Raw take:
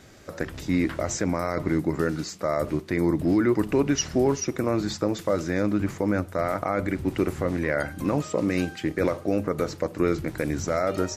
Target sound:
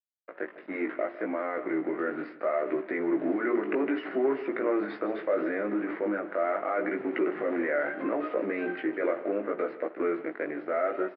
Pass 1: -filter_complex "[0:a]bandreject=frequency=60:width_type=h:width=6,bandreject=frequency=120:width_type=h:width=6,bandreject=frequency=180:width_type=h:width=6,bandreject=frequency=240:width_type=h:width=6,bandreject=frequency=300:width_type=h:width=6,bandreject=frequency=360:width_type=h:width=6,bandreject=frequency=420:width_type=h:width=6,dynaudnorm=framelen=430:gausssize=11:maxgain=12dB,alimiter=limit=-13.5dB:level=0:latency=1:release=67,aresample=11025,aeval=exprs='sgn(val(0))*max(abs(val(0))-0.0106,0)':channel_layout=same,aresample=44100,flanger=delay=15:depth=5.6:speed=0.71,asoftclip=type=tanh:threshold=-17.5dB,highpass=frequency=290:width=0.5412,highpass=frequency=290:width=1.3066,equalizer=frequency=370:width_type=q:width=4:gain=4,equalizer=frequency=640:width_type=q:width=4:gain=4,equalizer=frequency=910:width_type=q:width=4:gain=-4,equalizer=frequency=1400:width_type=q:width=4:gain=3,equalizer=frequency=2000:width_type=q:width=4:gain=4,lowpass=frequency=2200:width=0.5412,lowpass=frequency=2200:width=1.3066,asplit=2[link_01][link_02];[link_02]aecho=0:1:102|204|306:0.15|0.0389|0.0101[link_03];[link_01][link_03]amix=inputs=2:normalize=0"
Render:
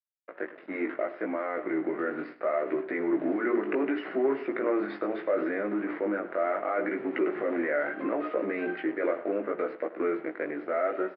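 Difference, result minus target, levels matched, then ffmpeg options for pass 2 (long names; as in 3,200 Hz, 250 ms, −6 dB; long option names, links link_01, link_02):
echo 56 ms early
-filter_complex "[0:a]bandreject=frequency=60:width_type=h:width=6,bandreject=frequency=120:width_type=h:width=6,bandreject=frequency=180:width_type=h:width=6,bandreject=frequency=240:width_type=h:width=6,bandreject=frequency=300:width_type=h:width=6,bandreject=frequency=360:width_type=h:width=6,bandreject=frequency=420:width_type=h:width=6,dynaudnorm=framelen=430:gausssize=11:maxgain=12dB,alimiter=limit=-13.5dB:level=0:latency=1:release=67,aresample=11025,aeval=exprs='sgn(val(0))*max(abs(val(0))-0.0106,0)':channel_layout=same,aresample=44100,flanger=delay=15:depth=5.6:speed=0.71,asoftclip=type=tanh:threshold=-17.5dB,highpass=frequency=290:width=0.5412,highpass=frequency=290:width=1.3066,equalizer=frequency=370:width_type=q:width=4:gain=4,equalizer=frequency=640:width_type=q:width=4:gain=4,equalizer=frequency=910:width_type=q:width=4:gain=-4,equalizer=frequency=1400:width_type=q:width=4:gain=3,equalizer=frequency=2000:width_type=q:width=4:gain=4,lowpass=frequency=2200:width=0.5412,lowpass=frequency=2200:width=1.3066,asplit=2[link_01][link_02];[link_02]aecho=0:1:158|316|474:0.15|0.0389|0.0101[link_03];[link_01][link_03]amix=inputs=2:normalize=0"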